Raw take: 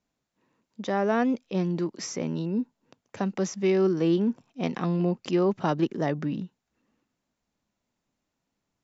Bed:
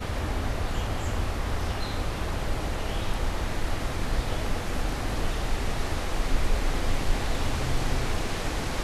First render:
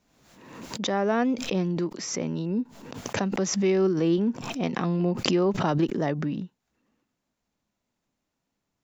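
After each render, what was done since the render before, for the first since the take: swell ahead of each attack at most 51 dB/s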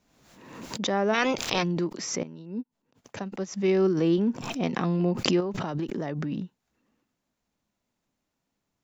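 1.13–1.62 s: spectral peaks clipped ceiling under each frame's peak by 26 dB; 2.23–3.68 s: upward expansion 2.5:1, over -43 dBFS; 5.40–6.32 s: compression 4:1, threshold -27 dBFS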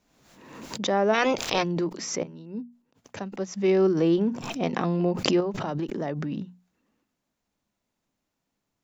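hum notches 60/120/180/240 Hz; dynamic bell 620 Hz, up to +4 dB, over -35 dBFS, Q 1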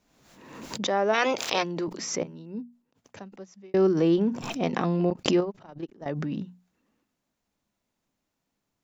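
0.87–1.88 s: high-pass 350 Hz 6 dB/octave; 2.43–3.74 s: fade out; 5.10–6.06 s: gate -28 dBFS, range -23 dB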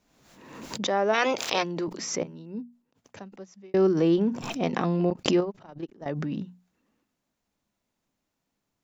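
no audible change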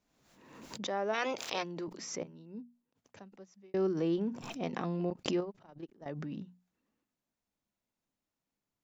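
trim -9.5 dB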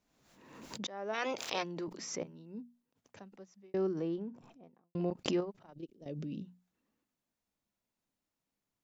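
0.87–1.51 s: fade in equal-power, from -16.5 dB; 3.37–4.95 s: studio fade out; 5.73–6.45 s: high-order bell 1.2 kHz -15.5 dB

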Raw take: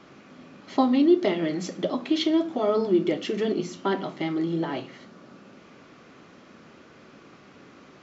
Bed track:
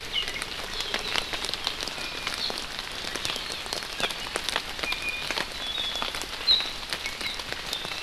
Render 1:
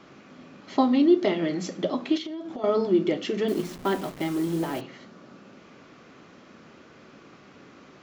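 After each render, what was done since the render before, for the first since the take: 2.17–2.64 s: compression 16:1, threshold -31 dBFS; 3.48–4.81 s: send-on-delta sampling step -37 dBFS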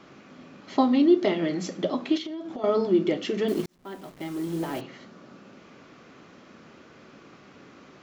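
3.66–4.88 s: fade in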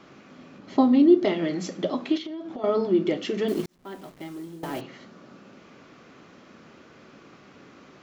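0.58–1.25 s: tilt shelf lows +4.5 dB, about 630 Hz; 2.12–3.06 s: distance through air 69 m; 4.02–4.63 s: fade out, to -16 dB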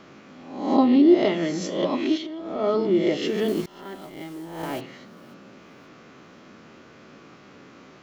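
reverse spectral sustain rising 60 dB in 0.70 s; feedback echo behind a high-pass 537 ms, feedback 34%, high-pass 2.1 kHz, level -20.5 dB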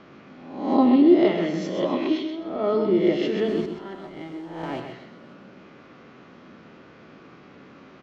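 distance through air 150 m; feedback delay 128 ms, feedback 28%, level -7 dB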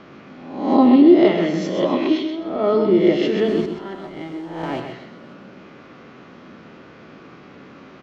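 trim +5 dB; peak limiter -2 dBFS, peak gain reduction 1.5 dB

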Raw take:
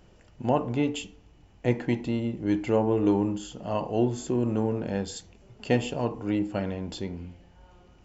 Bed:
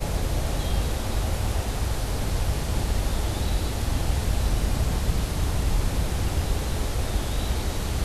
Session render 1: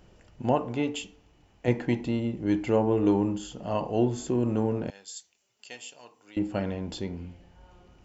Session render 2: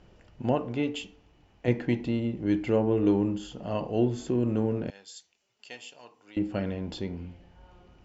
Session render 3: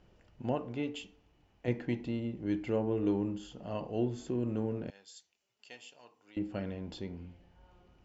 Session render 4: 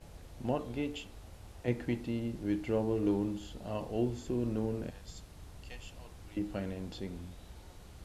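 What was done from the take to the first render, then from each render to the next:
0.55–1.68 s: bass shelf 240 Hz -6.5 dB; 4.90–6.37 s: differentiator
low-pass 5.3 kHz 12 dB/octave; dynamic bell 890 Hz, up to -6 dB, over -44 dBFS, Q 1.8
trim -7 dB
add bed -25.5 dB

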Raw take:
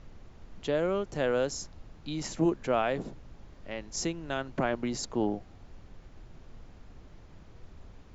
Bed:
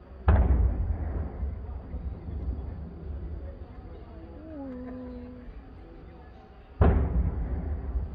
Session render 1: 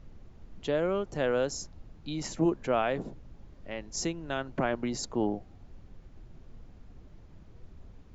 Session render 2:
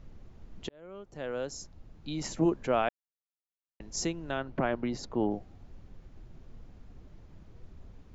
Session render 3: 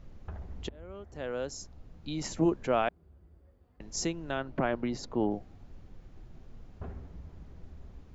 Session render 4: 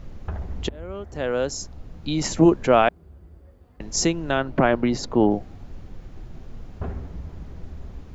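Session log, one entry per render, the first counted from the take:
noise reduction 6 dB, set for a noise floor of -53 dBFS
0.69–2.24 s: fade in linear; 2.89–3.80 s: mute; 4.31–5.31 s: distance through air 130 m
add bed -21 dB
trim +11 dB

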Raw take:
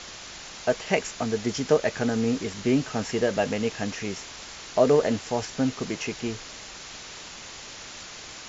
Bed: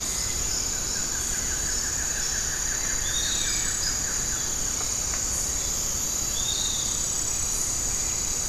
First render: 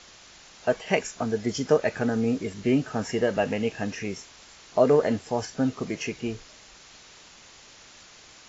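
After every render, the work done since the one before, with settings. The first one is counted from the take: noise print and reduce 9 dB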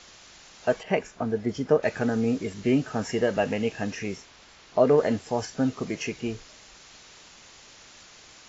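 0.83–1.83 s: low-pass 1.6 kHz 6 dB/octave; 4.16–4.98 s: distance through air 84 m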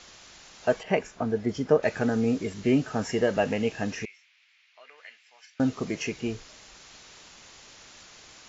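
4.05–5.60 s: ladder band-pass 2.6 kHz, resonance 55%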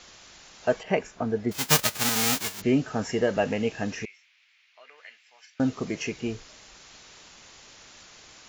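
1.51–2.60 s: formants flattened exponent 0.1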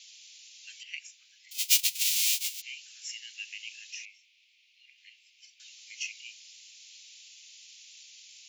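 steep high-pass 2.4 kHz 48 dB/octave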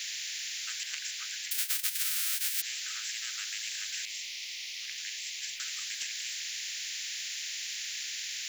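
compression 3:1, threshold -33 dBFS, peak gain reduction 12 dB; spectrum-flattening compressor 10:1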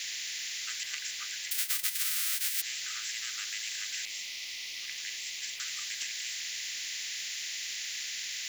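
small resonant body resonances 320/1200/2000 Hz, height 8 dB, ringing for 65 ms; small samples zeroed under -48 dBFS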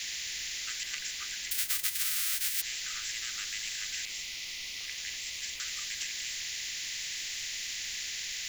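add bed -26.5 dB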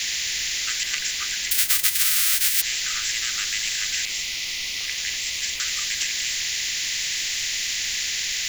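trim +11 dB

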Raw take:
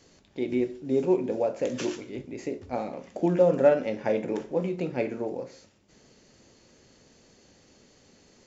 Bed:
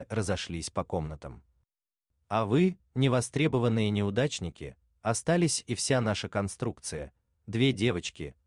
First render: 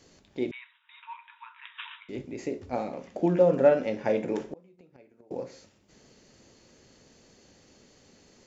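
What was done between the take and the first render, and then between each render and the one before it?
0.51–2.09 s: brick-wall FIR band-pass 890–3900 Hz; 3.07–3.74 s: distance through air 62 m; 4.40–5.31 s: inverted gate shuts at -24 dBFS, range -28 dB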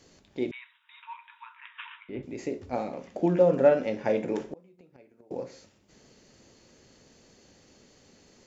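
1.56–2.23 s: low-pass 2.9 kHz 24 dB/octave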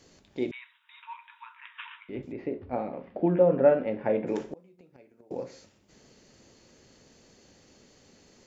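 2.32–4.27 s: Gaussian low-pass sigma 3.1 samples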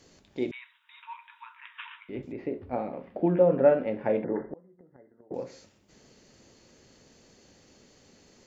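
4.24–5.34 s: brick-wall FIR low-pass 2.1 kHz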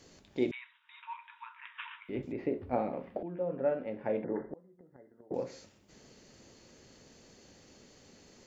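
0.55–2.05 s: distance through air 120 m; 3.23–5.35 s: fade in, from -18.5 dB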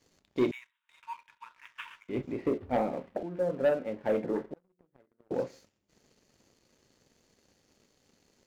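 waveshaping leveller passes 2; upward expansion 1.5:1, over -44 dBFS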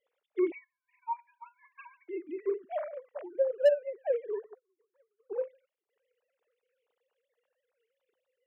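formants replaced by sine waves; hard clipper -15.5 dBFS, distortion -20 dB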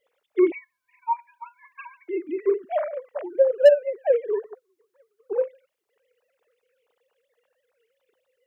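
trim +9.5 dB

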